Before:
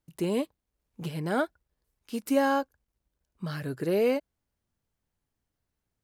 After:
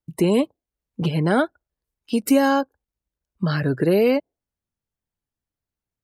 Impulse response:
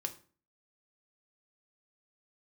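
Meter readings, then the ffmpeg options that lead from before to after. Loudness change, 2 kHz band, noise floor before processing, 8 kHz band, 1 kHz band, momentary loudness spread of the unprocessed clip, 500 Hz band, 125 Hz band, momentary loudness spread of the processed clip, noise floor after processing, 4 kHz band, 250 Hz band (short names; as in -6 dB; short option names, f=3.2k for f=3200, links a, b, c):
+8.5 dB, +7.5 dB, -85 dBFS, +9.5 dB, +6.5 dB, 14 LU, +7.5 dB, +12.0 dB, 10 LU, under -85 dBFS, +9.0 dB, +10.0 dB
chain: -filter_complex "[0:a]acrossover=split=270|3000[a][b][c];[b]acompressor=threshold=-29dB:ratio=3[d];[a][d][c]amix=inputs=3:normalize=0,afftdn=nr=22:nf=-49,asplit=2[e][f];[f]acompressor=threshold=-38dB:ratio=6,volume=2dB[g];[e][g]amix=inputs=2:normalize=0,volume=8.5dB"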